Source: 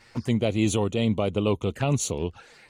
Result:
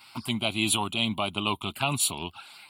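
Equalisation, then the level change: HPF 700 Hz 6 dB/oct; high shelf 6100 Hz +11 dB; fixed phaser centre 1800 Hz, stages 6; +7.0 dB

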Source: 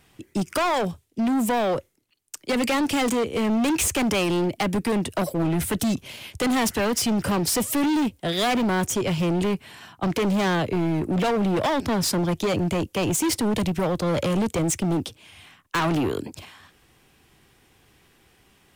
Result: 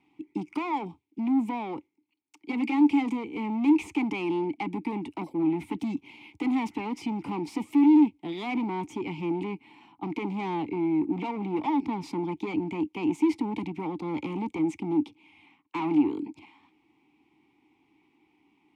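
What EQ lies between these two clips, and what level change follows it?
vowel filter u; +5.5 dB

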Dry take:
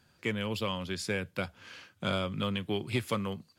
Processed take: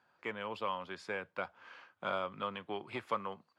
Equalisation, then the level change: band-pass 970 Hz, Q 1.5; +2.5 dB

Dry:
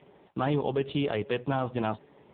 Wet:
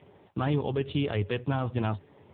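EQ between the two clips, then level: bell 94 Hz +14 dB 0.57 oct; dynamic EQ 680 Hz, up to -4 dB, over -40 dBFS, Q 1; 0.0 dB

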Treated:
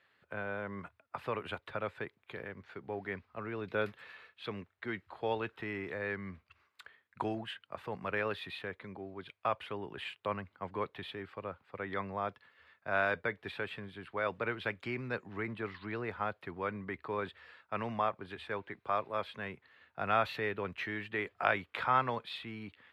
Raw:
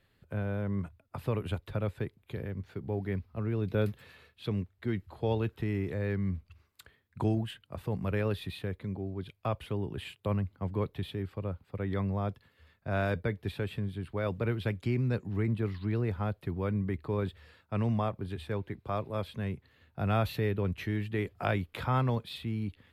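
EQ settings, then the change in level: band-pass 1500 Hz, Q 0.87; +5.5 dB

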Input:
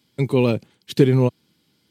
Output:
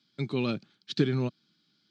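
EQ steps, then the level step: speaker cabinet 250–5000 Hz, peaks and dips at 260 Hz -7 dB, 490 Hz -9 dB, 990 Hz -8 dB, 2000 Hz -10 dB, 2800 Hz -8 dB; band shelf 570 Hz -8.5 dB; 0.0 dB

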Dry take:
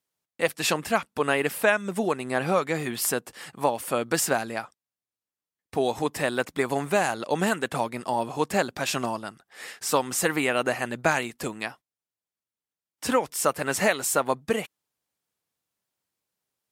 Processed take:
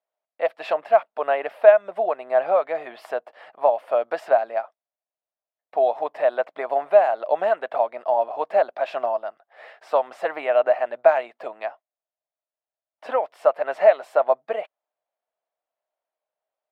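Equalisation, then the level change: resonant high-pass 640 Hz, resonance Q 7.2; air absorption 400 m; -2.5 dB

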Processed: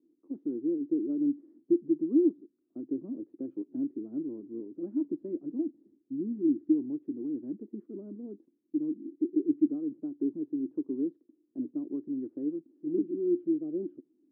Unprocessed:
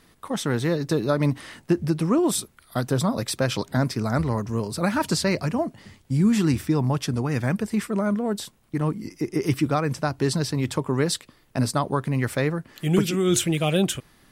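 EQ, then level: Butterworth band-pass 310 Hz, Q 3.8; air absorption 260 m; 0.0 dB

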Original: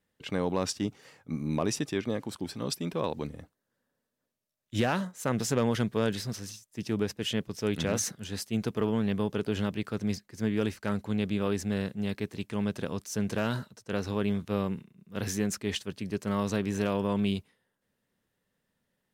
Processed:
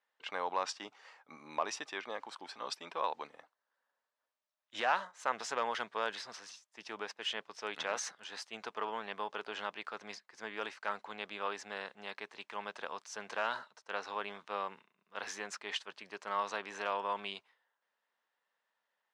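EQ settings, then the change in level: resonant high-pass 900 Hz, resonance Q 1.7; air absorption 110 m; -1.5 dB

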